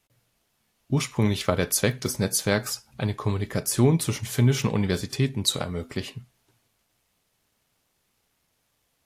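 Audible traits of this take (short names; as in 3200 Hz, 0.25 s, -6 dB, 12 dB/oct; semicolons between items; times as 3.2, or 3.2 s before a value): a quantiser's noise floor 12-bit, dither none; AAC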